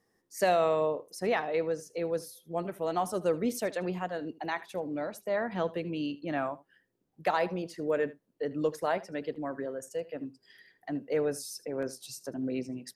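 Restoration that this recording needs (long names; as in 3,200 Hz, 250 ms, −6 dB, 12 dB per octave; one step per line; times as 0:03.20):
echo removal 77 ms −19 dB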